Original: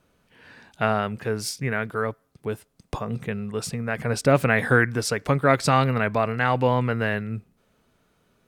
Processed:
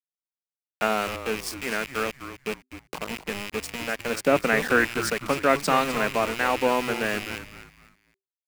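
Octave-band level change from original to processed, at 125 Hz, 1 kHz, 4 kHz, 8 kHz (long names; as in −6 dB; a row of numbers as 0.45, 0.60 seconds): −14.0, −1.0, +2.5, −0.5 decibels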